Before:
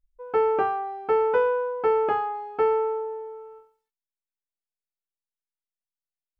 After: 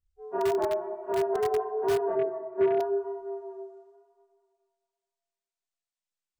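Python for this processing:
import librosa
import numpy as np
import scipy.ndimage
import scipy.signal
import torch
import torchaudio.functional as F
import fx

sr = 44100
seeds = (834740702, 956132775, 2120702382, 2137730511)

p1 = fx.partial_stretch(x, sr, pct=80)
p2 = fx.rider(p1, sr, range_db=3, speed_s=2.0)
p3 = p2 + fx.echo_split(p2, sr, split_hz=590.0, low_ms=155, high_ms=223, feedback_pct=52, wet_db=-11.0, dry=0)
p4 = fx.chorus_voices(p3, sr, voices=2, hz=0.9, base_ms=29, depth_ms=3.1, mix_pct=55)
p5 = (np.mod(10.0 ** (18.0 / 20.0) * p4 + 1.0, 2.0) - 1.0) / 10.0 ** (18.0 / 20.0)
p6 = p4 + (p5 * 10.0 ** (-10.0 / 20.0))
p7 = fx.cabinet(p6, sr, low_hz=120.0, low_slope=12, high_hz=2400.0, hz=(130.0, 300.0, 460.0, 860.0, 1300.0), db=(5, 8, 7, -10, -4), at=(2.15, 2.8))
y = p7 * 10.0 ** (-3.5 / 20.0)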